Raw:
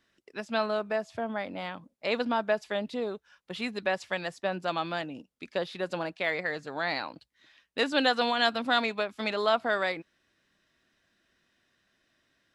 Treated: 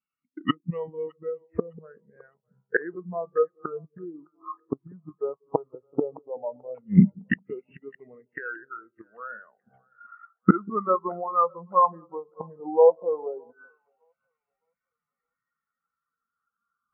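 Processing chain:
high-shelf EQ 5,900 Hz −9 dB
hum removal 88.2 Hz, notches 24
pitch vibrato 4.8 Hz 6.4 cents
in parallel at −10.5 dB: bit reduction 6 bits
on the sum: gate with flip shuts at −27 dBFS, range −27 dB
auto-filter low-pass saw down 0.2 Hz 950–3,900 Hz
echo with a time of its own for lows and highs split 650 Hz, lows 140 ms, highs 452 ms, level −13 dB
wrong playback speed 45 rpm record played at 33 rpm
boost into a limiter +24.5 dB
every bin expanded away from the loudest bin 2.5 to 1
level −1 dB

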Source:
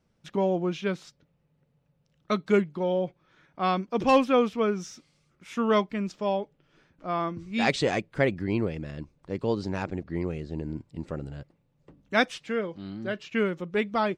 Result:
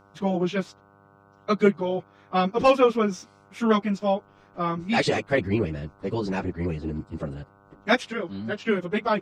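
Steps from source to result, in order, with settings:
time stretch by phase vocoder 0.65×
hum with harmonics 100 Hz, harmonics 15, −63 dBFS −1 dB per octave
level +6.5 dB

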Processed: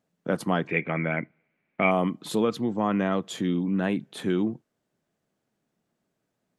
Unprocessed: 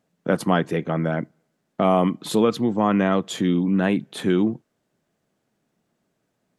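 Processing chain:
0:00.67–0:01.91: low-pass with resonance 2,300 Hz, resonance Q 11
level −5.5 dB

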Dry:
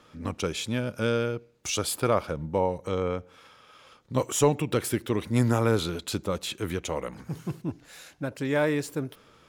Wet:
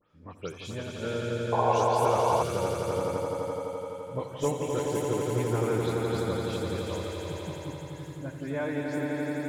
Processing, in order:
every frequency bin delayed by itself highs late, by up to 107 ms
high-shelf EQ 3,400 Hz −7 dB
echo that builds up and dies away 85 ms, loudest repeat 5, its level −5.5 dB
noise reduction from a noise print of the clip's start 6 dB
sound drawn into the spectrogram noise, 0:01.52–0:02.43, 420–1,100 Hz −18 dBFS
level −7 dB

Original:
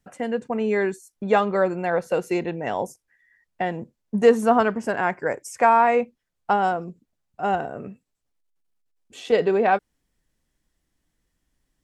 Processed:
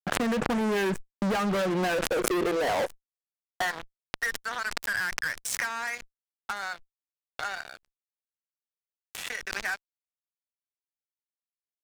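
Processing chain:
noise gate with hold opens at −38 dBFS
high shelf with overshoot 2,200 Hz −10 dB, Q 3
downward compressor 20 to 1, threshold −24 dBFS, peak gain reduction 16 dB
high-pass filter sweep 150 Hz → 2,500 Hz, 0:01.34–0:04.57
delay with a high-pass on its return 1,107 ms, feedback 64%, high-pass 2,600 Hz, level −19 dB
fuzz pedal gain 36 dB, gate −45 dBFS
background raised ahead of every attack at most 27 dB per second
level −11.5 dB

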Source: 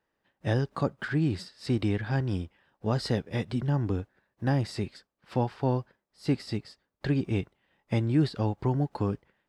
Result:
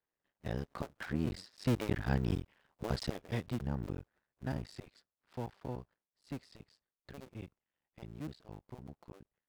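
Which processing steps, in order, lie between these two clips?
sub-harmonics by changed cycles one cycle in 2, muted
source passing by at 0:02.28, 6 m/s, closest 4.7 metres
level −1 dB

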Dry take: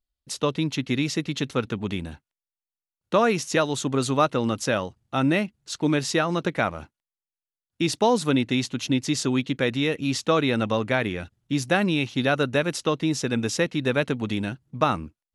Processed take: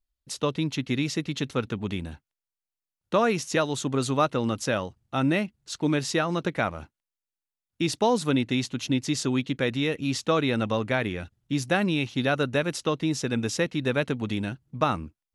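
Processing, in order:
low-shelf EQ 66 Hz +6.5 dB
level −2.5 dB

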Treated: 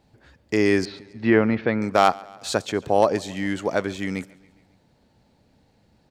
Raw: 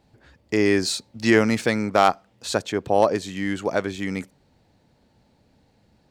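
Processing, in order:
0:00.85–0:01.82: Gaussian smoothing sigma 3.1 samples
repeating echo 138 ms, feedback 58%, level −23 dB

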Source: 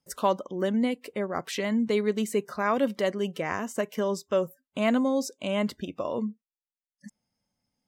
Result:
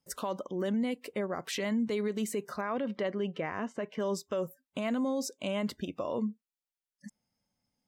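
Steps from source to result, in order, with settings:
0:02.61–0:04.00: low-pass filter 3,100 Hz 12 dB per octave
brickwall limiter −22.5 dBFS, peak gain reduction 11.5 dB
level −1.5 dB

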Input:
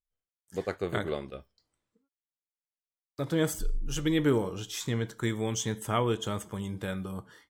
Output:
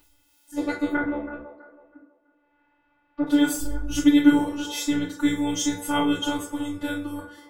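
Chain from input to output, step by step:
0:00.91–0:03.27: low-pass filter 1,900 Hz 24 dB per octave
upward compression, threshold −46 dBFS
phases set to zero 290 Hz
delay with a band-pass on its return 326 ms, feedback 31%, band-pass 750 Hz, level −11 dB
feedback delay network reverb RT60 0.42 s, low-frequency decay 1×, high-frequency decay 0.8×, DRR −9 dB

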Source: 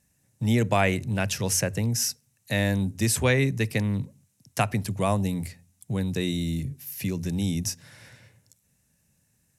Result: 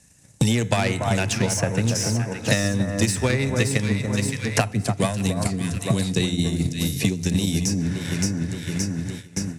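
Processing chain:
low-pass filter 9,400 Hz 24 dB per octave
tuned comb filter 430 Hz, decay 0.59 s, mix 50%
feedback delay network reverb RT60 2.7 s, high-frequency decay 0.5×, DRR 17 dB
soft clipping −23.5 dBFS, distortion −15 dB
delay that swaps between a low-pass and a high-pass 285 ms, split 1,500 Hz, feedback 62%, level −4.5 dB
0:04.71–0:07.32: rotating-speaker cabinet horn 5 Hz
transient designer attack +8 dB, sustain −3 dB
high-shelf EQ 4,700 Hz +6.5 dB
noise gate with hold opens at −49 dBFS
multiband upward and downward compressor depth 100%
level +8 dB

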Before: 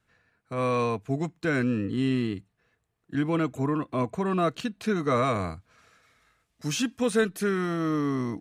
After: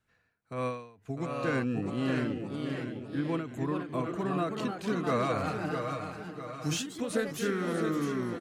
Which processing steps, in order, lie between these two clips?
0:02.19–0:03.29: Gaussian smoothing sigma 2.4 samples
on a send: repeating echo 651 ms, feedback 45%, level −7.5 dB
on the sum: delay with pitch and tempo change per echo 781 ms, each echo +2 semitones, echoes 2, each echo −6 dB
0:05.46–0:06.93: comb filter 6.5 ms, depth 62%
every ending faded ahead of time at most 100 dB per second
level −5.5 dB

